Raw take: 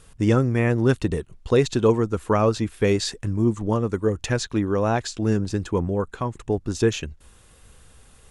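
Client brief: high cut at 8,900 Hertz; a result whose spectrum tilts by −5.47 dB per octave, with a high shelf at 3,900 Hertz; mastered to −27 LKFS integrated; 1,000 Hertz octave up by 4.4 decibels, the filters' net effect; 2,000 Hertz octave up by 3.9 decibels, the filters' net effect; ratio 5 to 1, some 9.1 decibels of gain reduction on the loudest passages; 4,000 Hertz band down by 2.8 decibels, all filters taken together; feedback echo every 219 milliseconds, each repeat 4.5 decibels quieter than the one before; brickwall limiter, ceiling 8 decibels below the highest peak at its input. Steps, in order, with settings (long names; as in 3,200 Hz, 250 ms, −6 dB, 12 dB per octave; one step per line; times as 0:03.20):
low-pass filter 8,900 Hz
parametric band 1,000 Hz +4.5 dB
parametric band 2,000 Hz +4 dB
high-shelf EQ 3,900 Hz +5.5 dB
parametric band 4,000 Hz −8 dB
downward compressor 5 to 1, threshold −23 dBFS
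brickwall limiter −21 dBFS
repeating echo 219 ms, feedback 60%, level −4.5 dB
level +3 dB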